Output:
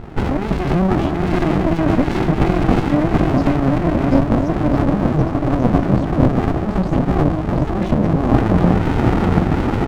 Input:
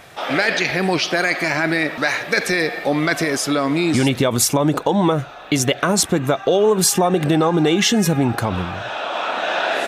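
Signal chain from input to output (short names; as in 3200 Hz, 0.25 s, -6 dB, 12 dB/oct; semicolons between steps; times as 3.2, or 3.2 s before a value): bell 470 Hz +8 dB 2 oct; de-hum 54.82 Hz, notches 8; negative-ratio compressor -21 dBFS, ratio -1; bouncing-ball echo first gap 0.73 s, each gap 0.85×, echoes 5; loudest bins only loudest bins 32; air absorption 180 m; reverb RT60 0.35 s, pre-delay 3 ms, DRR 14.5 dB; running maximum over 65 samples; gain -6.5 dB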